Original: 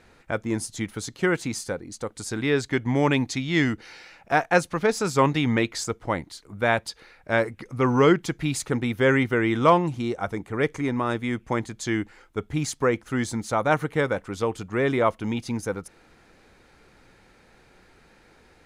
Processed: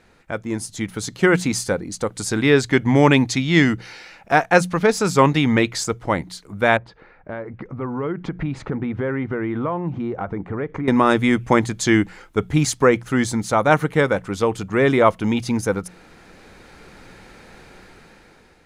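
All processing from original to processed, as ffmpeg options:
ffmpeg -i in.wav -filter_complex "[0:a]asettb=1/sr,asplit=3[link_01][link_02][link_03];[link_01]atrim=end=6.774[link_04];[link_02]atrim=start=6.77:end=10.88,asetpts=PTS-STARTPTS,afade=type=in:duration=0.004:curve=qsin,afade=type=out:start_time=4.106:duration=0.004:curve=qsin,lowpass=1500,acompressor=threshold=-33dB:ratio=6:attack=3.2:release=140:knee=1:detection=peak[link_05];[link_03]atrim=start=10.876[link_06];[link_04][link_05]acrossfade=duration=0.004:curve1=hsin:curve2=qsin[link_07];[link_07][link_06]acrossfade=duration=0.004:curve1=qsin:curve2=hsin,equalizer=frequency=180:width=6.2:gain=5.5,bandreject=frequency=60:width_type=h:width=6,bandreject=frequency=120:width_type=h:width=6,bandreject=frequency=180:width_type=h:width=6,dynaudnorm=framelen=290:gausssize=7:maxgain=11.5dB" out.wav

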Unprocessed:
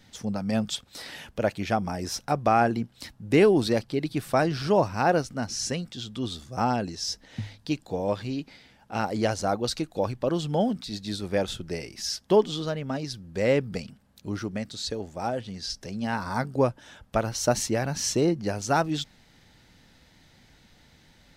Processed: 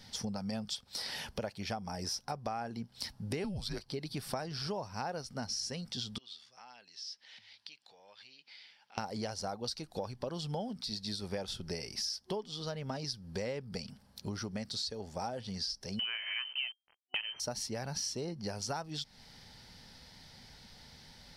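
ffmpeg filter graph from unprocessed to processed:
ffmpeg -i in.wav -filter_complex "[0:a]asettb=1/sr,asplit=3[link_01][link_02][link_03];[link_01]atrim=end=3.444[link_04];[link_02]atrim=start=3.44:end=3.86,asetpts=PTS-STARTPTS,afade=type=in:duration=0.004:curve=qsin,afade=type=out:start_time=0.416:duration=0.004:curve=qsin,highpass=230,afreqshift=-200[link_05];[link_03]atrim=start=3.856[link_06];[link_04][link_05]acrossfade=duration=0.004:curve1=hsin:curve2=qsin[link_07];[link_07][link_06]acrossfade=duration=0.004:curve1=qsin:curve2=hsin,asettb=1/sr,asplit=3[link_08][link_09][link_10];[link_08]atrim=end=6.184[link_11];[link_09]atrim=start=6.18:end=8.98,asetpts=PTS-STARTPTS,afade=type=in:duration=0.004:curve=qsin,afade=type=out:start_time=2.796:duration=0.004:curve=qsin,acompressor=threshold=-48dB:ratio=2.5:attack=3.2:release=140:knee=1:detection=peak,bandpass=frequency=2700:width_type=q:width=1.5[link_12];[link_10]atrim=start=8.976[link_13];[link_11][link_12]acrossfade=duration=0.004:curve1=hsin:curve2=qsin[link_14];[link_14][link_13]acrossfade=duration=0.004:curve1=qsin:curve2=hsin,asettb=1/sr,asplit=3[link_15][link_16][link_17];[link_15]atrim=end=15.994[link_18];[link_16]atrim=start=15.99:end=17.4,asetpts=PTS-STARTPTS,afade=type=in:duration=0.004:curve=qsin,afade=type=out:start_time=1.406:duration=0.004:curve=qsin,acontrast=89,aeval=exprs='val(0)*gte(abs(val(0)),0.0251)':channel_layout=same,lowpass=frequency=2700:width_type=q:width=0.5098,lowpass=frequency=2700:width_type=q:width=0.6013,lowpass=frequency=2700:width_type=q:width=0.9,lowpass=frequency=2700:width_type=q:width=2.563,afreqshift=-3200[link_19];[link_17]atrim=start=17.396[link_20];[link_18][link_19]acrossfade=duration=0.004:curve1=hsin:curve2=qsin[link_21];[link_21][link_20]acrossfade=duration=0.004:curve1=qsin:curve2=hsin,superequalizer=6b=0.501:9b=1.41:13b=1.41:14b=2.82:16b=1.58,acompressor=threshold=-35dB:ratio=10" out.wav

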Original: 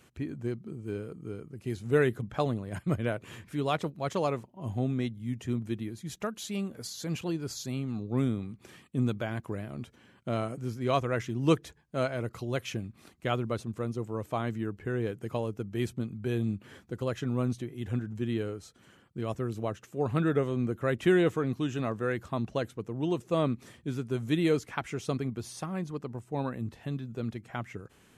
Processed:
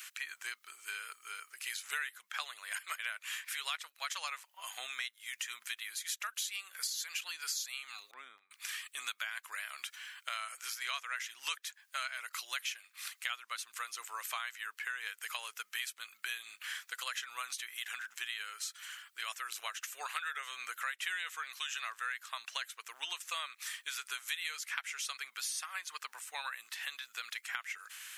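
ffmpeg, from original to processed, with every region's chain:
ffmpeg -i in.wav -filter_complex "[0:a]asettb=1/sr,asplit=3[link_01][link_02][link_03];[link_01]atrim=end=8.114[link_04];[link_02]atrim=start=8.11:end=8.51,asetpts=PTS-STARTPTS,afade=type=in:duration=0.004:curve=qsin,afade=type=out:start_time=0.396:duration=0.004:curve=qsin,bandpass=frequency=120:width_type=q:width=0.5,agate=range=-8dB:threshold=-34dB:ratio=16:release=100:detection=peak[link_05];[link_03]atrim=start=8.506[link_06];[link_04][link_05]acrossfade=duration=0.004:curve1=hsin:curve2=qsin[link_07];[link_07][link_06]acrossfade=duration=0.004:curve1=qsin:curve2=hsin,highpass=frequency=1500:width=0.5412,highpass=frequency=1500:width=1.3066,highshelf=frequency=11000:gain=7.5,acompressor=threshold=-53dB:ratio=5,volume=16dB" out.wav

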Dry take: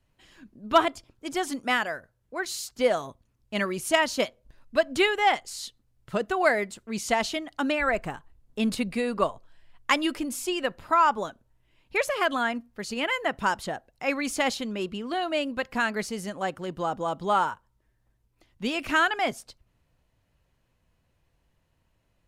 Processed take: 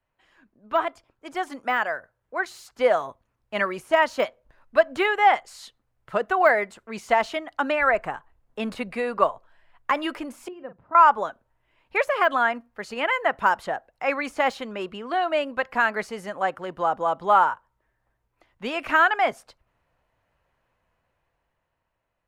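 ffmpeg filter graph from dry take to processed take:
ffmpeg -i in.wav -filter_complex "[0:a]asettb=1/sr,asplit=3[link_01][link_02][link_03];[link_01]atrim=end=10.484[link_04];[link_02]atrim=start=10.48:end=10.95,asetpts=PTS-STARTPTS,afade=type=in:duration=0.004:curve=qsin,afade=type=out:start_time=0.466:duration=0.004:curve=qsin,bandpass=frequency=140:width_type=q:width=1.1,asplit=2[link_05][link_06];[link_06]adelay=41,volume=-11dB[link_07];[link_05][link_07]amix=inputs=2:normalize=0,atrim=end_sample=20727[link_08];[link_03]atrim=start=10.946[link_09];[link_04][link_08]acrossfade=duration=0.004:curve1=hsin:curve2=qsin[link_10];[link_10][link_09]acrossfade=duration=0.004:curve1=qsin:curve2=hsin,deesser=0.75,acrossover=split=510 2200:gain=0.224 1 0.2[link_11][link_12][link_13];[link_11][link_12][link_13]amix=inputs=3:normalize=0,dynaudnorm=framelen=210:gausssize=13:maxgain=7.5dB" out.wav

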